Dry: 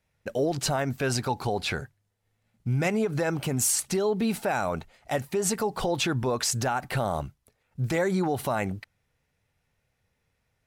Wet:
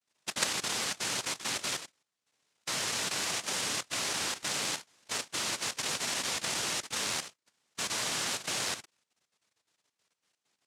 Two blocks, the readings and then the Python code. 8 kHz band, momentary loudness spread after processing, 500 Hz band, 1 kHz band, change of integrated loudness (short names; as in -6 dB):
-0.5 dB, 6 LU, -16.0 dB, -8.0 dB, -4.0 dB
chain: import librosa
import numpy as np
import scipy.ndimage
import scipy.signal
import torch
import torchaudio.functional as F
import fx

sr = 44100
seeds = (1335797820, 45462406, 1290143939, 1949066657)

y = fx.vibrato(x, sr, rate_hz=0.33, depth_cents=30.0)
y = fx.noise_vocoder(y, sr, seeds[0], bands=1)
y = fx.level_steps(y, sr, step_db=11)